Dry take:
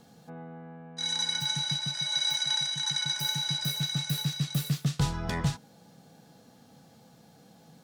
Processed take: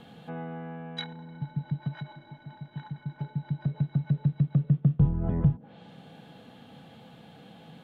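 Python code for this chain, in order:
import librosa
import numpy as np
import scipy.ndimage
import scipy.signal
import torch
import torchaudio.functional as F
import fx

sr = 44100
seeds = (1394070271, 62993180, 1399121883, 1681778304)

y = fx.env_lowpass_down(x, sr, base_hz=350.0, full_db=-27.0)
y = fx.high_shelf_res(y, sr, hz=4200.0, db=-10.0, q=3.0)
y = y * 10.0 ** (6.0 / 20.0)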